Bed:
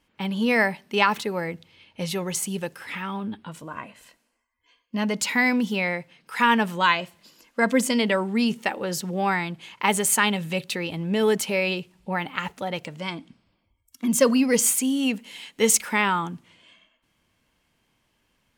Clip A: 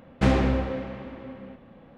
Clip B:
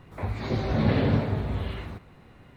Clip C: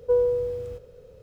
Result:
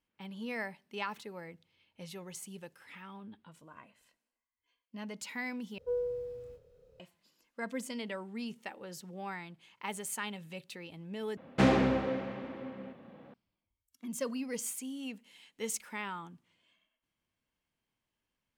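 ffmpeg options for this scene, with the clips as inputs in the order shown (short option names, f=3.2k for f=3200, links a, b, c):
-filter_complex "[0:a]volume=-17.5dB[a];[3:a]asplit=2[b][c];[c]adelay=27,volume=-4dB[d];[b][d]amix=inputs=2:normalize=0[e];[1:a]highpass=150[f];[a]asplit=3[g][h][i];[g]atrim=end=5.784[j];[e]atrim=end=1.22,asetpts=PTS-STARTPTS,volume=-15dB[k];[h]atrim=start=6.996:end=11.374[l];[f]atrim=end=1.97,asetpts=PTS-STARTPTS,volume=-2dB[m];[i]atrim=start=13.336[n];[j][k]acrossfade=d=0.004:c1=hsin:c2=hsin[o];[o][l]acrossfade=d=0.004:c1=hsin:c2=hsin[p];[p][m]acrossfade=d=0.004:c1=hsin:c2=hsin[q];[q][n]acrossfade=d=0.004:c1=hsin:c2=hsin"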